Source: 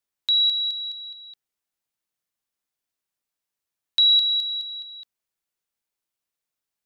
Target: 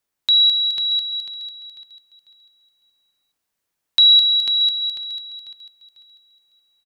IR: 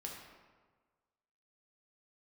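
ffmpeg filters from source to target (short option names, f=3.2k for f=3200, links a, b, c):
-filter_complex "[0:a]aecho=1:1:495|990|1485|1980:0.668|0.194|0.0562|0.0163,asplit=2[a][b];[1:a]atrim=start_sample=2205,afade=t=out:st=0.25:d=0.01,atrim=end_sample=11466,lowpass=2.4k[c];[b][c]afir=irnorm=-1:irlink=0,volume=-5dB[d];[a][d]amix=inputs=2:normalize=0,volume=5.5dB"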